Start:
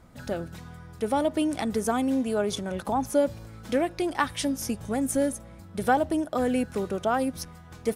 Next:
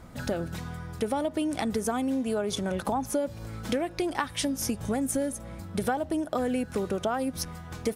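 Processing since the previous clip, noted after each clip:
downward compressor 5 to 1, threshold −32 dBFS, peak gain reduction 13.5 dB
level +6 dB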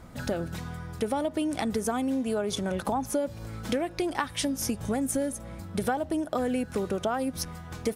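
no processing that can be heard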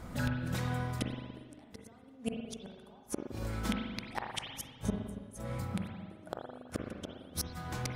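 gate with flip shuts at −21 dBFS, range −34 dB
spring reverb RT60 1.4 s, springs 40/56 ms, chirp 60 ms, DRR 1 dB
level +1 dB

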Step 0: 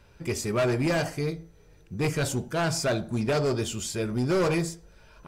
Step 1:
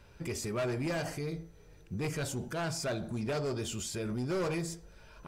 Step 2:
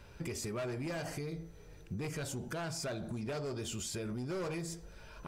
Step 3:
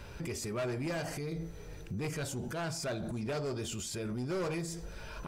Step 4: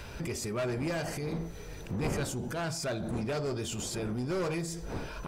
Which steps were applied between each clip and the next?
brickwall limiter −28 dBFS, peak gain reduction 7.5 dB; level −1 dB
downward compressor, threshold −39 dBFS, peak gain reduction 8 dB; level +2.5 dB
brickwall limiter −38.5 dBFS, peak gain reduction 9.5 dB; level +7.5 dB
wind on the microphone 430 Hz −46 dBFS; one half of a high-frequency compander encoder only; level +2.5 dB

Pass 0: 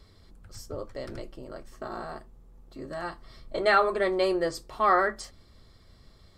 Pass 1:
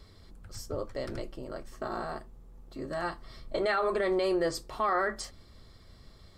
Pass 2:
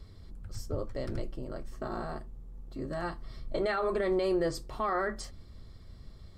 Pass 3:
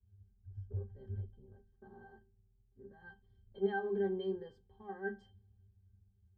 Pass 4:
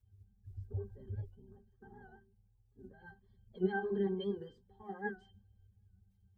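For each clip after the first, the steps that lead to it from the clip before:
brickwall limiter −21.5 dBFS, peak gain reduction 11.5 dB; level +1.5 dB
low-shelf EQ 290 Hz +10 dB; level −4 dB
resonances in every octave G, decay 0.2 s; multiband upward and downward expander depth 70%; level −1 dB
spectral magnitudes quantised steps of 30 dB; wow of a warped record 78 rpm, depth 100 cents; level +1 dB

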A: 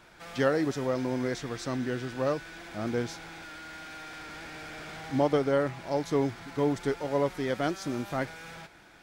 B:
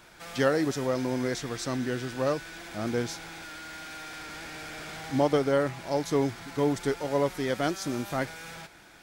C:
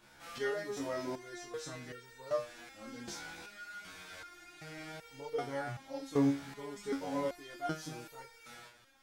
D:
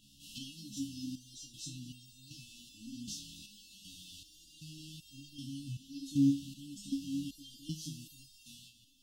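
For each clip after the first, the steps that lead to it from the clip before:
high-shelf EQ 5,300 Hz +8 dB; level +1 dB
multi-voice chorus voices 2, 0.77 Hz, delay 23 ms, depth 2.1 ms; step-sequenced resonator 2.6 Hz 70–460 Hz; level +4.5 dB
linear-phase brick-wall band-stop 310–2,600 Hz; level +3 dB

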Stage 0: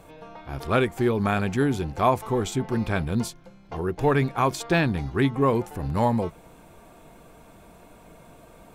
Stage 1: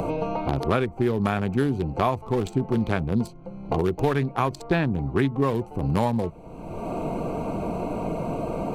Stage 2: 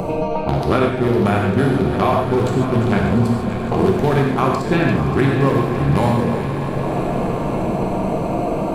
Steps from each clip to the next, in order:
adaptive Wiener filter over 25 samples; multiband upward and downward compressor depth 100%
feedback delay that plays each chunk backwards 295 ms, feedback 67%, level −11 dB; echo that builds up and dies away 172 ms, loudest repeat 5, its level −16 dB; reverb whose tail is shaped and stops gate 170 ms flat, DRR 0 dB; level +3.5 dB

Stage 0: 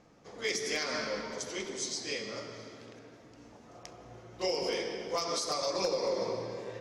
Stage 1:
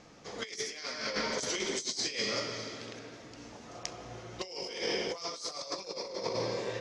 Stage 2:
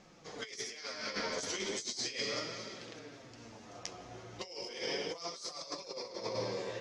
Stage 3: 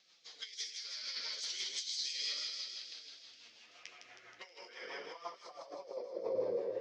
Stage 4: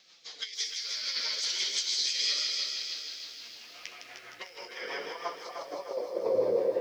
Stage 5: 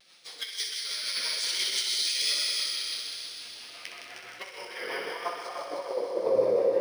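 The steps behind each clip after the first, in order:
low-pass filter 6,900 Hz 12 dB per octave; high-shelf EQ 2,200 Hz +9.5 dB; compressor whose output falls as the input rises −35 dBFS, ratio −0.5
flanger 0.37 Hz, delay 5.1 ms, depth 6.3 ms, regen +35%
band-pass filter sweep 4,000 Hz → 500 Hz, 0:03.12–0:06.32; rotating-speaker cabinet horn 6 Hz; delay with a high-pass on its return 159 ms, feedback 62%, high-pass 3,100 Hz, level −5 dB; level +6.5 dB
feedback echo at a low word length 304 ms, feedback 55%, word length 11 bits, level −7.5 dB; level +8.5 dB
pitch vibrato 0.96 Hz 42 cents; feedback echo with a high-pass in the loop 63 ms, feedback 83%, high-pass 420 Hz, level −8 dB; linearly interpolated sample-rate reduction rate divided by 3×; level +2.5 dB

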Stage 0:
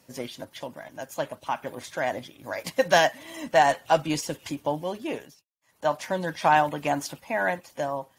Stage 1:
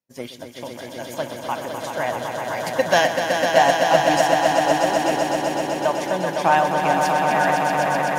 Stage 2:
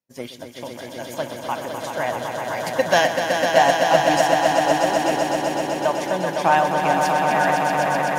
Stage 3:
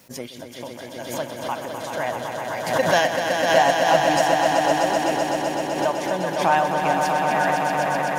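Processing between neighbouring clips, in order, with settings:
echo that builds up and dies away 127 ms, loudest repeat 5, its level −6 dB; downward expander −36 dBFS; level +2 dB
no processing that can be heard
background raised ahead of every attack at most 74 dB per second; level −2 dB

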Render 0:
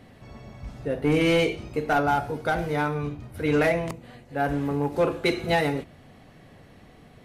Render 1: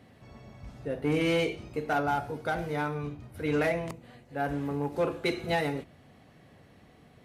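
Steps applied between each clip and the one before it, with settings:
high-pass filter 50 Hz
level −5.5 dB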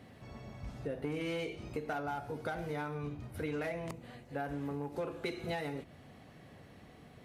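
downward compressor 6 to 1, threshold −36 dBFS, peak gain reduction 12.5 dB
level +1 dB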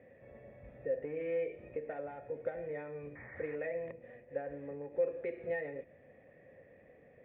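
sound drawn into the spectrogram noise, 0:03.15–0:03.56, 690–2,300 Hz −47 dBFS
formant resonators in series e
level +8.5 dB

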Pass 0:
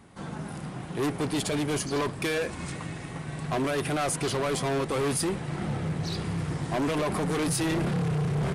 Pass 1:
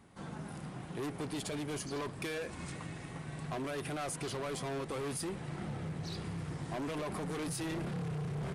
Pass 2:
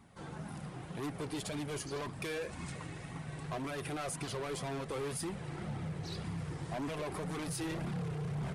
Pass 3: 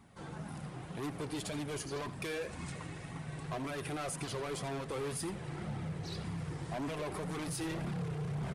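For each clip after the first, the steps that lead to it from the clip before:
downward compressor, threshold −29 dBFS, peak gain reduction 4 dB; level −7 dB
flanger 1.9 Hz, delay 0.8 ms, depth 1.8 ms, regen −41%; level +3.5 dB
single-tap delay 86 ms −16 dB

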